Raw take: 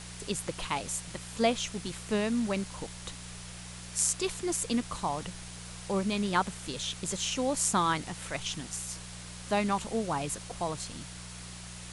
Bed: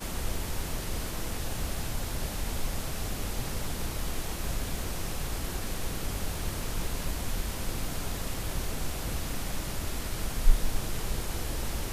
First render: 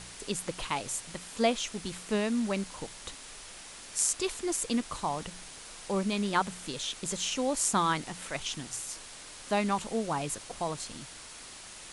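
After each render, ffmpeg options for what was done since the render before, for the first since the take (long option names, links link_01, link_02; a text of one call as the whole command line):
ffmpeg -i in.wav -af "bandreject=frequency=60:width_type=h:width=4,bandreject=frequency=120:width_type=h:width=4,bandreject=frequency=180:width_type=h:width=4" out.wav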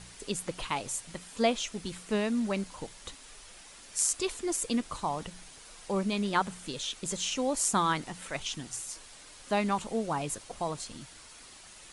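ffmpeg -i in.wav -af "afftdn=noise_reduction=6:noise_floor=-47" out.wav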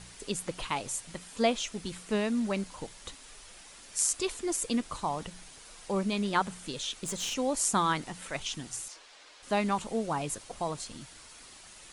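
ffmpeg -i in.wav -filter_complex "[0:a]asplit=3[link_01][link_02][link_03];[link_01]afade=type=out:start_time=6.91:duration=0.02[link_04];[link_02]aeval=exprs='clip(val(0),-1,0.0224)':channel_layout=same,afade=type=in:start_time=6.91:duration=0.02,afade=type=out:start_time=7.33:duration=0.02[link_05];[link_03]afade=type=in:start_time=7.33:duration=0.02[link_06];[link_04][link_05][link_06]amix=inputs=3:normalize=0,asettb=1/sr,asplit=3[link_07][link_08][link_09];[link_07]atrim=end=8.884[link_10];[link_08]atrim=start=8.88:end=9.43,asetpts=PTS-STARTPTS,afade=type=in:duration=0.004:curve=qsin,afade=type=out:start_time=0.546:duration=0.004:curve=qsin,acrossover=split=330 5900:gain=0.1 1 0.141[link_11][link_12][link_13];[link_11][link_12][link_13]amix=inputs=3:normalize=0[link_14];[link_09]atrim=start=9.426[link_15];[link_10][link_14]acrossfade=duration=0.004:curve1=hsin:curve2=qsin[link_16];[link_16][link_15]acrossfade=duration=0.004:curve1=qsin:curve2=hsin" out.wav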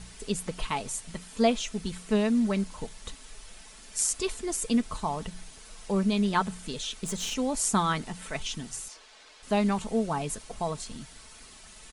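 ffmpeg -i in.wav -af "lowshelf=frequency=160:gain=8,aecho=1:1:4.6:0.41" out.wav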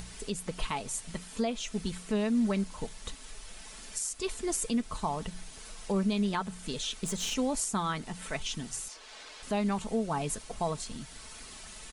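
ffmpeg -i in.wav -af "alimiter=limit=-20.5dB:level=0:latency=1:release=327,acompressor=mode=upward:threshold=-40dB:ratio=2.5" out.wav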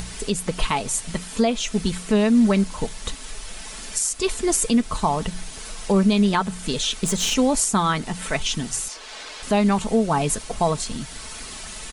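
ffmpeg -i in.wav -af "volume=11dB" out.wav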